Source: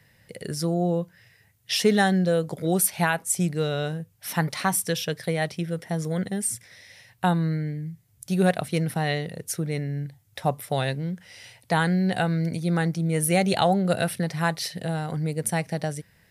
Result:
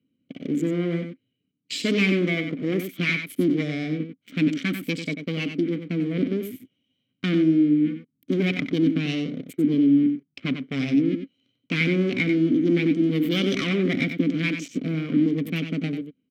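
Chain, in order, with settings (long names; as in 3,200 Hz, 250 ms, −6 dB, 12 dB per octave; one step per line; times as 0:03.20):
adaptive Wiener filter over 25 samples
leveller curve on the samples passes 3
formants moved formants +6 semitones
formant filter i
single-tap delay 93 ms −8 dB
level +8 dB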